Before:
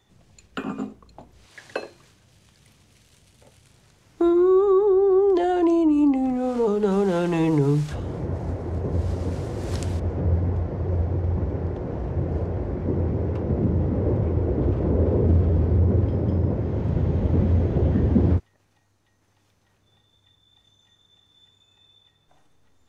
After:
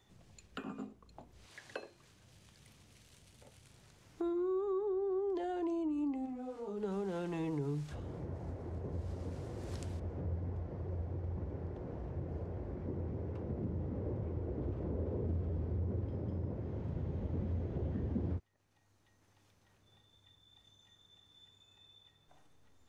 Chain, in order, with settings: compressor 1.5:1, threshold -53 dBFS, peak gain reduction 14 dB; 6.25–6.76 detuned doubles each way 35 cents -> 23 cents; gain -4.5 dB

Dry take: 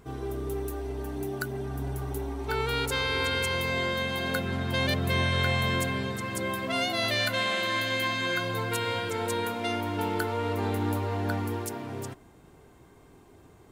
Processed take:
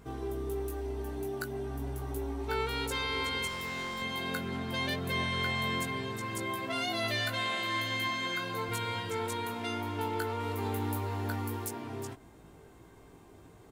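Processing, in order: 8.08–8.69 HPF 170 Hz 12 dB/oct; 10.4–11.68 high shelf 9500 Hz +10 dB; in parallel at +1 dB: compressor, threshold -39 dBFS, peak gain reduction 16 dB; 3.47–4.02 on the sum: hard clip -27.5 dBFS, distortion -20 dB; doubler 18 ms -5 dB; gain -8 dB

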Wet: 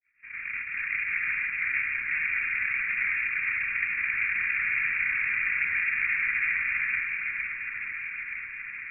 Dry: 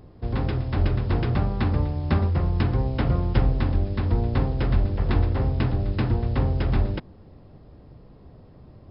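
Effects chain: opening faded in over 1.19 s; 4.02–6.6 bell 140 Hz +7 dB 2.4 oct; sine folder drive 15 dB, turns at -8 dBFS; noise vocoder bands 1; Butterworth band-stop 1900 Hz, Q 0.52; air absorption 200 m; echo with dull and thin repeats by turns 0.462 s, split 1200 Hz, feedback 78%, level -2.5 dB; inverted band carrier 2600 Hz; gain -7 dB

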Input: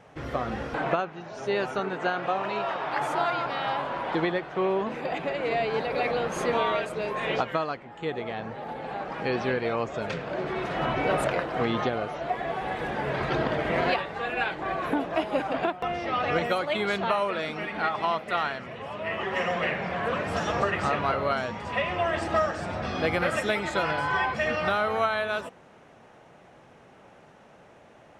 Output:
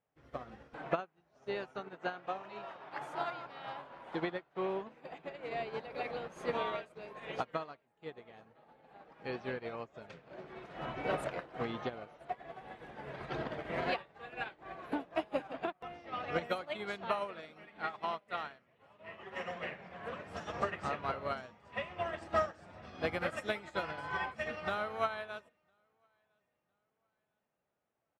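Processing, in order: on a send: feedback echo 1.006 s, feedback 33%, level -16.5 dB; on the sum: upward expander 2.5:1, over -40 dBFS; gain -5 dB

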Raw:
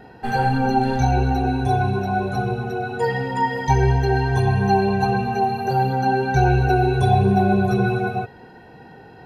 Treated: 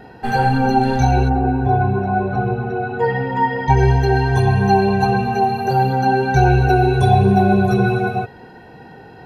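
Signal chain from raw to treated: 1.28–3.76 LPF 1400 Hz -> 3100 Hz 12 dB/oct; gain +3.5 dB

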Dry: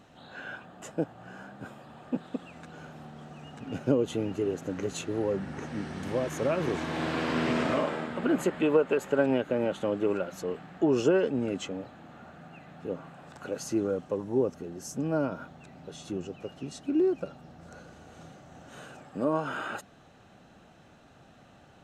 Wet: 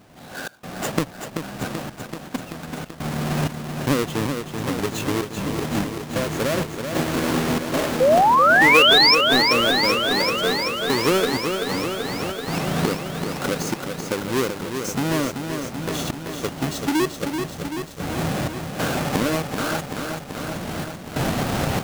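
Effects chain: half-waves squared off; recorder AGC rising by 16 dB/s; step gate "xxx.xxx..xxx..x" 95 bpm -24 dB; painted sound rise, 8–9.15, 490–5600 Hz -15 dBFS; lo-fi delay 0.384 s, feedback 80%, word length 7-bit, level -6 dB

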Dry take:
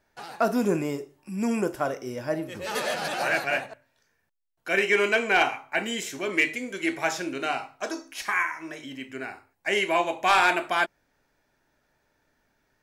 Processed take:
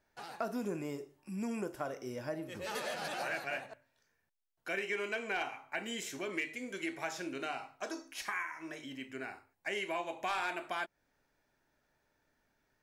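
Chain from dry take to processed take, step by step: compressor 2.5:1, threshold -30 dBFS, peak gain reduction 9.5 dB; gain -6.5 dB

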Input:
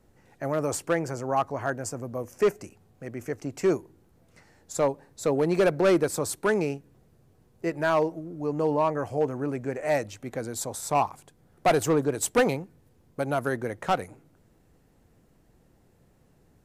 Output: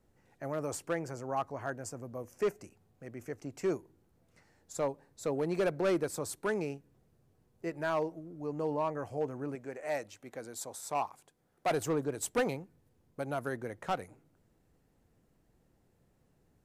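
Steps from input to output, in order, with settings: 9.55–11.71 low shelf 190 Hz -12 dB; gain -8.5 dB

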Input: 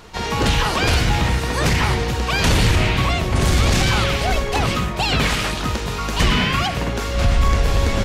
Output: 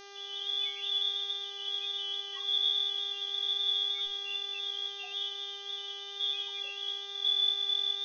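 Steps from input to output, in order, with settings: Wiener smoothing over 41 samples; inverted band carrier 3500 Hz; resonator bank F#2 major, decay 0.62 s; loudest bins only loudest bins 8; buzz 400 Hz, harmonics 16, -53 dBFS -3 dB/oct; gain +3 dB

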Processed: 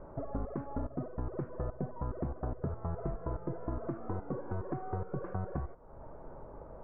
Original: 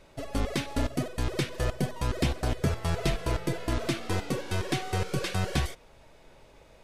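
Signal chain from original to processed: steep low-pass 1300 Hz 36 dB/oct; compressor 3:1, threshold -46 dBFS, peak gain reduction 18 dB; gain +7.5 dB

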